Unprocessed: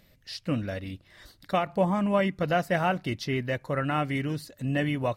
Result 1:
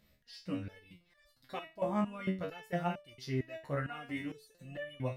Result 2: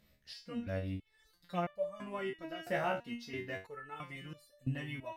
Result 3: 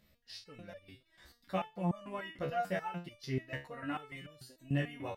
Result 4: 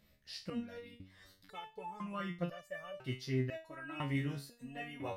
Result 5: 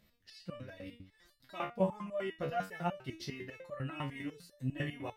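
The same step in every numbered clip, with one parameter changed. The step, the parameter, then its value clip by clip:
stepped resonator, rate: 4.4, 3, 6.8, 2, 10 Hz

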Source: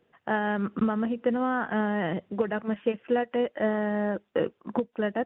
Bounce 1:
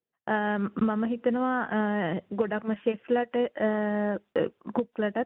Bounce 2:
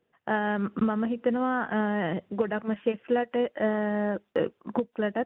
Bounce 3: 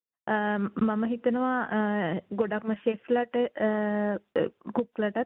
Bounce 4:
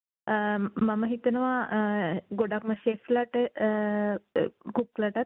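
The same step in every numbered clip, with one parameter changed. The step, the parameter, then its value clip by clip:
gate, range: -25, -7, -38, -57 dB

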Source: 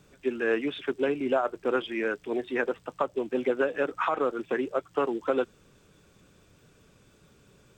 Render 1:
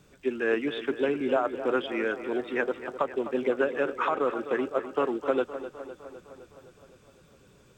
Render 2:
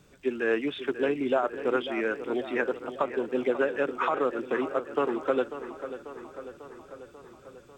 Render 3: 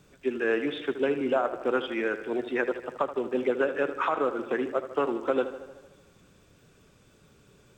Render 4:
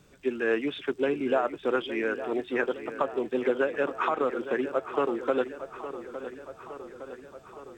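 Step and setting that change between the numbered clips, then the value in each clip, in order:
tape echo, time: 256, 543, 77, 863 ms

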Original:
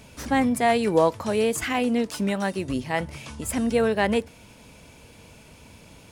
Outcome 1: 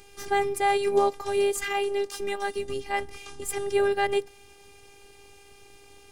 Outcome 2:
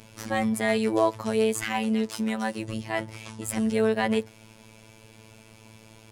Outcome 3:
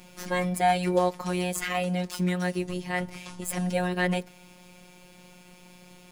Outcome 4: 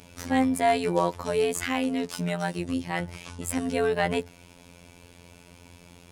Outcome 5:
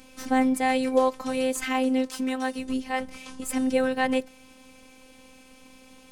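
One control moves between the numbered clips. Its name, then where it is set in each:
robotiser, frequency: 400, 110, 180, 87, 260 Hz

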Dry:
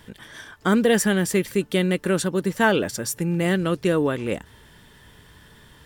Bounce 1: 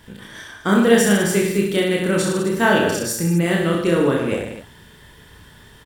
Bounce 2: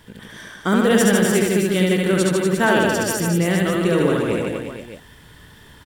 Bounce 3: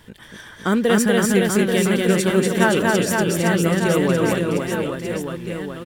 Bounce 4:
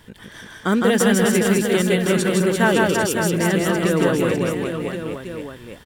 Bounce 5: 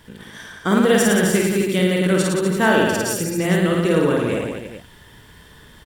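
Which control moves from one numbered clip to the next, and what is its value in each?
reverse bouncing-ball echo, first gap: 30, 70, 240, 160, 50 ms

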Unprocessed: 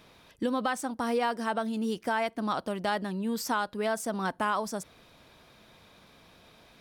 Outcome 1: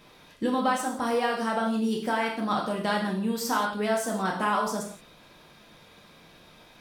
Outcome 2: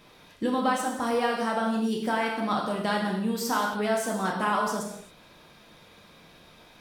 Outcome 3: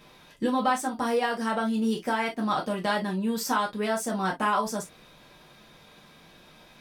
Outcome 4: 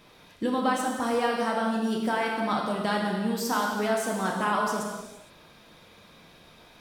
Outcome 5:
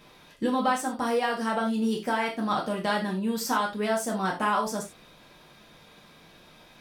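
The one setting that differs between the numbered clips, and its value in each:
non-linear reverb, gate: 200, 300, 80, 490, 120 ms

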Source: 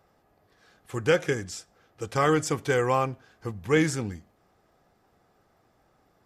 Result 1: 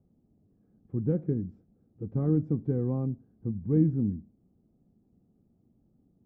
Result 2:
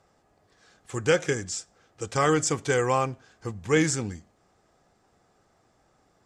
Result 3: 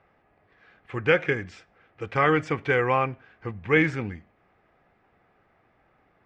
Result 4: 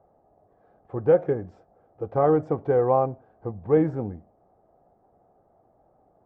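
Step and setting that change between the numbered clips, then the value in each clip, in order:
synth low-pass, frequency: 230, 7600, 2300, 700 Hz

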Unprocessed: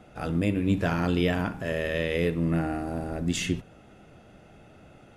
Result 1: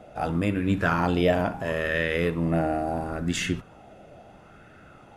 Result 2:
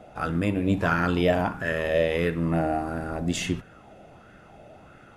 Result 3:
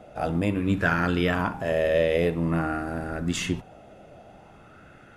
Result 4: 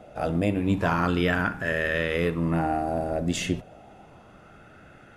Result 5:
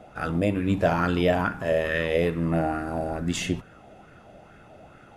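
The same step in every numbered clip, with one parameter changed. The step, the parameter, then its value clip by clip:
LFO bell, rate: 0.74, 1.5, 0.5, 0.3, 2.3 Hz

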